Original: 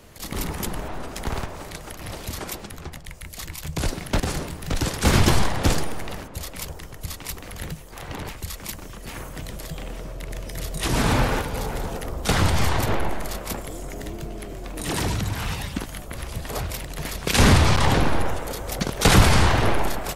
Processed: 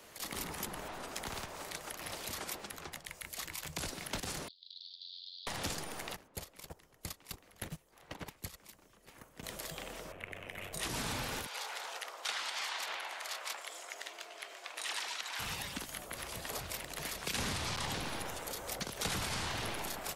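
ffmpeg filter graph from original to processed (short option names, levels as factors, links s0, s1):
-filter_complex "[0:a]asettb=1/sr,asplit=3[s0][s1][s2];[s0]atrim=end=4.484[s3];[s1]atrim=start=4.48:end=5.47,asetpts=PTS-STARTPTS,afade=t=in:d=0.004:c=qsin,afade=t=out:st=0.986:d=0.004:c=qsin,asuperpass=centerf=4000:order=8:qfactor=3,aeval=exprs='val(0)*sin(2*PI*45*n/s)':c=same,acompressor=threshold=0.00891:ratio=10:attack=3.2:release=140:knee=1:detection=peak[s4];[s2]atrim=start=5.466[s5];[s3][s4]acrossfade=d=0.004:c1=hsin:c2=qsin[s6];[s6][s5]acrossfade=d=0.004:c1=qsin:c2=hsin,asettb=1/sr,asplit=3[s7][s8][s9];[s7]atrim=end=6.164[s10];[s8]atrim=start=6.16:end=9.44,asetpts=PTS-STARTPTS,afade=t=in:d=0.004:c=qsin,afade=t=out:st=3.276:d=0.004:c=qsin,lowshelf=f=480:g=7.5,agate=range=0.112:threshold=0.0501:ratio=16:release=100:detection=peak[s11];[s9]atrim=start=9.436[s12];[s10][s11]acrossfade=d=0.004:c1=hsin:c2=qsin[s13];[s13][s12]acrossfade=d=0.004:c1=qsin:c2=hsin,asettb=1/sr,asplit=3[s14][s15][s16];[s14]atrim=end=10.124[s17];[s15]atrim=start=10.12:end=10.73,asetpts=PTS-STARTPTS,afade=t=in:d=0.004:c=qsin,afade=t=out:st=0.606:d=0.004:c=qsin,highshelf=f=3500:t=q:w=3:g=-10.5,aeval=exprs='val(0)*sin(2*PI*48*n/s)':c=same[s18];[s16]atrim=start=10.726[s19];[s17][s18]acrossfade=d=0.004:c1=hsin:c2=qsin[s20];[s20][s19]acrossfade=d=0.004:c1=qsin:c2=hsin,asettb=1/sr,asplit=3[s21][s22][s23];[s21]atrim=end=11.464[s24];[s22]atrim=start=11.46:end=15.39,asetpts=PTS-STARTPTS,afade=t=in:d=0.004:c=qsin,afade=t=out:st=3.926:d=0.004:c=qsin,highpass=710,lowpass=3500,aemphasis=mode=production:type=riaa[s25];[s23]atrim=start=15.386[s26];[s24][s25]acrossfade=d=0.004:c1=hsin:c2=qsin[s27];[s27][s26]acrossfade=d=0.004:c1=qsin:c2=hsin,lowshelf=f=130:g=-11.5,acrossover=split=100|220|2800[s28][s29][s30][s31];[s28]acompressor=threshold=0.0224:ratio=4[s32];[s29]acompressor=threshold=0.0178:ratio=4[s33];[s30]acompressor=threshold=0.0126:ratio=4[s34];[s31]acompressor=threshold=0.0141:ratio=4[s35];[s32][s33][s34][s35]amix=inputs=4:normalize=0,lowshelf=f=350:g=-9,volume=0.708"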